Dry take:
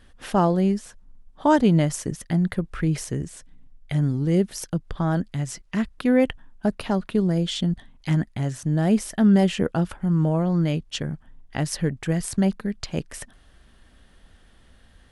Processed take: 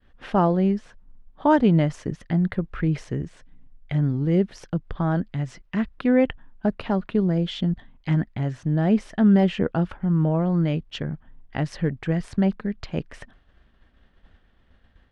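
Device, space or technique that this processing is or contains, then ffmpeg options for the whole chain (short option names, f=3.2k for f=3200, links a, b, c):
hearing-loss simulation: -af "lowpass=3k,agate=range=-33dB:threshold=-47dB:ratio=3:detection=peak"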